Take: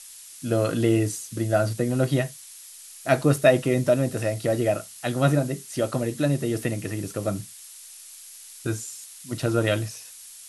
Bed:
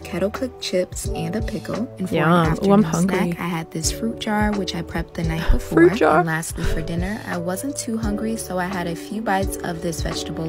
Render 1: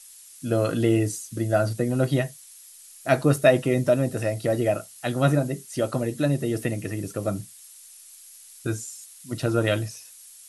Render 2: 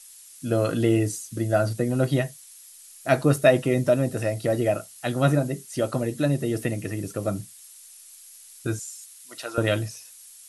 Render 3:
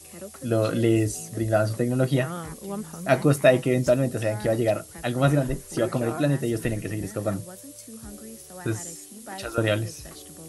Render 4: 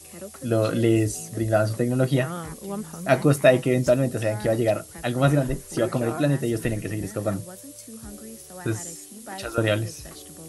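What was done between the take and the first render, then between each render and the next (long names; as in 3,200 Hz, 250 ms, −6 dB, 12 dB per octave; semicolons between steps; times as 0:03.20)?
broadband denoise 6 dB, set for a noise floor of −45 dBFS
0:08.79–0:09.58: high-pass filter 780 Hz
mix in bed −18.5 dB
level +1 dB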